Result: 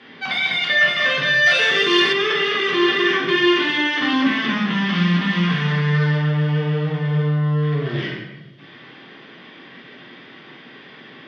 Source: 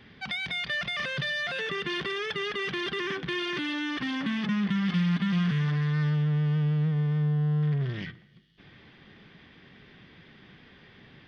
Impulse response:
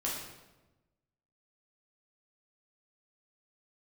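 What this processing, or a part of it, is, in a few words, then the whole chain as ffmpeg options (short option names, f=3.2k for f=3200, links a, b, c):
supermarket ceiling speaker: -filter_complex "[0:a]highpass=280,lowpass=5.5k[a];[1:a]atrim=start_sample=2205[b];[a][b]afir=irnorm=-1:irlink=0,asettb=1/sr,asplit=3[c][d][e];[c]atrim=end=1.464[f];[d]atrim=start=1.46:end=2.13,asetpts=PTS-STARTPTS,afade=t=in:d=0.004:c=qsin,afade=t=out:st=0.666:d=0.004:c=qsin,aemphasis=mode=production:type=75fm[g];[e]atrim=start=2.126[h];[f][g]acrossfade=d=0.004:c1=hsin:c2=qsin[i];[i][h]acrossfade=d=0.004:c1=qsin:c2=hsin,volume=9dB"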